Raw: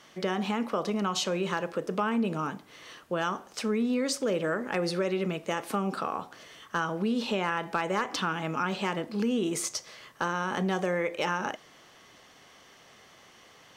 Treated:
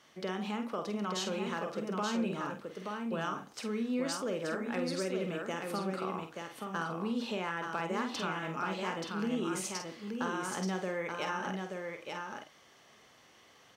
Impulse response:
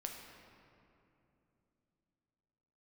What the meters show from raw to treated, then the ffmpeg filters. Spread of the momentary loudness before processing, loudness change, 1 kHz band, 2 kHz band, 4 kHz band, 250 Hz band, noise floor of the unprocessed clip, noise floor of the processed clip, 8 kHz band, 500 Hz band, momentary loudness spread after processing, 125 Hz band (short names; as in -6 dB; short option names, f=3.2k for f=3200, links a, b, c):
7 LU, -6.0 dB, -5.5 dB, -5.5 dB, -5.5 dB, -5.0 dB, -56 dBFS, -61 dBFS, -5.5 dB, -5.5 dB, 7 LU, -5.5 dB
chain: -filter_complex "[0:a]highpass=42,asplit=2[a][b];[b]adelay=48,volume=-7dB[c];[a][c]amix=inputs=2:normalize=0,aecho=1:1:879:0.596,volume=-7.5dB"